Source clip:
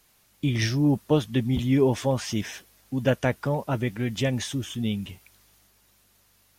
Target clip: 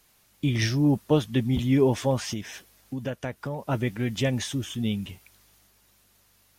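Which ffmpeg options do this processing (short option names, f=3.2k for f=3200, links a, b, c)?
-filter_complex "[0:a]asettb=1/sr,asplit=3[a][b][c];[a]atrim=end=2.334[d];[b]atrim=start=2.33:end=3.69,asetpts=PTS-STARTPTS,afade=t=in:d=0.004:c=qsin,afade=t=out:st=1.356:d=0.004:c=qsin,acompressor=threshold=-31dB:ratio=3[e];[c]atrim=start=3.686[f];[d][e]acrossfade=d=0.004:c1=hsin:c2=qsin[g];[g][f]acrossfade=d=0.004:c1=qsin:c2=hsin"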